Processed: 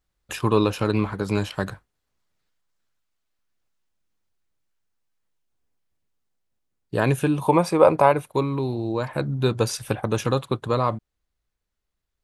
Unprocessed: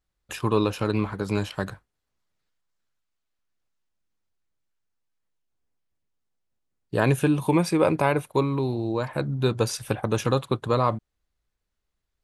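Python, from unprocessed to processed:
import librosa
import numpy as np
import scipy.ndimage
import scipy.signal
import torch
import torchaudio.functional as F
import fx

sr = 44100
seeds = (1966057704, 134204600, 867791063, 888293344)

y = fx.rider(x, sr, range_db=5, speed_s=2.0)
y = fx.band_shelf(y, sr, hz=770.0, db=8.5, octaves=1.7, at=(7.41, 8.12))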